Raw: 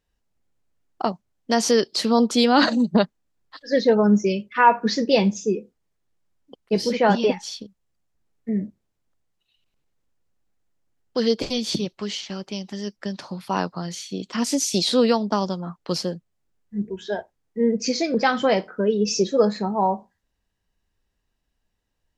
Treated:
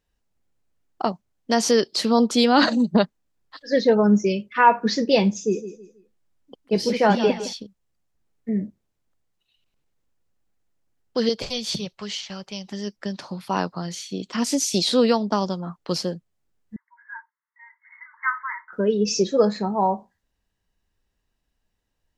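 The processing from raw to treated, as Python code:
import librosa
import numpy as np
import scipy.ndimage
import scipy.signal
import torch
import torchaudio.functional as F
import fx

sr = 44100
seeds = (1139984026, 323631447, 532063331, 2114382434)

y = fx.echo_feedback(x, sr, ms=161, feedback_pct=30, wet_db=-12.5, at=(5.34, 7.53))
y = fx.peak_eq(y, sr, hz=300.0, db=-13.5, octaves=0.77, at=(11.29, 12.67))
y = fx.brickwall_bandpass(y, sr, low_hz=870.0, high_hz=2200.0, at=(16.76, 18.73))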